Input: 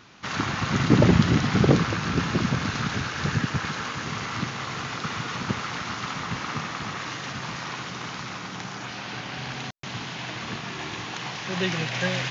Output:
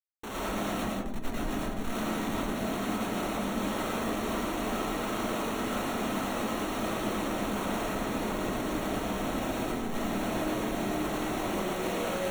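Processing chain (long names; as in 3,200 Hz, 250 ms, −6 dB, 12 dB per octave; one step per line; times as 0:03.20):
running median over 25 samples
Butterworth high-pass 200 Hz 96 dB per octave
compressor whose output falls as the input rises −32 dBFS, ratio −0.5
comparator with hysteresis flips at −39.5 dBFS
Butterworth band-reject 4,900 Hz, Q 5.1
comb and all-pass reverb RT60 0.65 s, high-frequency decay 0.3×, pre-delay 70 ms, DRR −5.5 dB
level −3.5 dB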